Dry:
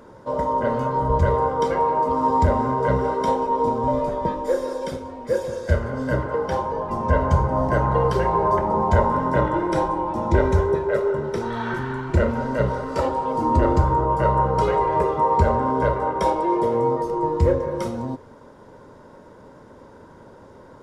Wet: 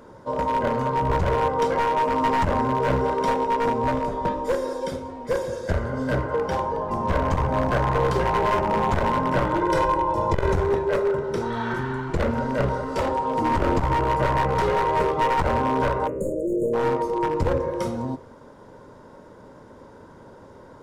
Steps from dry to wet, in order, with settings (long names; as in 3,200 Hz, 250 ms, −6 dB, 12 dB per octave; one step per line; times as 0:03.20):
wavefolder on the positive side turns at −17 dBFS
0:09.61–0:10.53: comb filter 2 ms, depth 74%
0:16.07–0:16.73: time-frequency box erased 640–6,500 Hz
hum removal 73.45 Hz, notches 39
saturating transformer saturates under 150 Hz